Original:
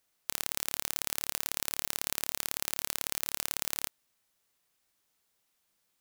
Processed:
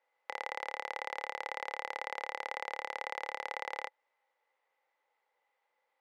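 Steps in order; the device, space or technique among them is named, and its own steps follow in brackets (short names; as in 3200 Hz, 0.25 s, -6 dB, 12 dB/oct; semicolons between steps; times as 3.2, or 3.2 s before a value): tin-can telephone (BPF 630–2000 Hz; small resonant body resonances 520/830/2000 Hz, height 16 dB, ringing for 35 ms)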